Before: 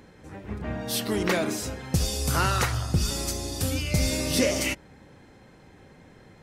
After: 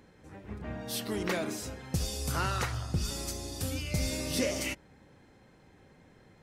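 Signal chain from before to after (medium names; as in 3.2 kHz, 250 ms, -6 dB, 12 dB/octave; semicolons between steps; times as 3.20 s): 2.32–3.04 s: treble shelf 9.7 kHz -6.5 dB; trim -7 dB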